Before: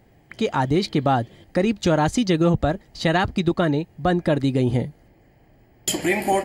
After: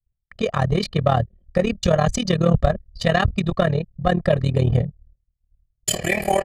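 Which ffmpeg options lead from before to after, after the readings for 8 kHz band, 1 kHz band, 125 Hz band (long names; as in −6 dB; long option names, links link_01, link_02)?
+1.5 dB, −0.5 dB, +3.5 dB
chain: -af "anlmdn=6.31,agate=range=-33dB:threshold=-53dB:ratio=3:detection=peak,lowshelf=frequency=100:gain=9,aecho=1:1:1.7:0.91,tremolo=f=38:d=0.857,aeval=exprs='0.668*(cos(1*acos(clip(val(0)/0.668,-1,1)))-cos(1*PI/2))+0.0473*(cos(5*acos(clip(val(0)/0.668,-1,1)))-cos(5*PI/2))':channel_layout=same"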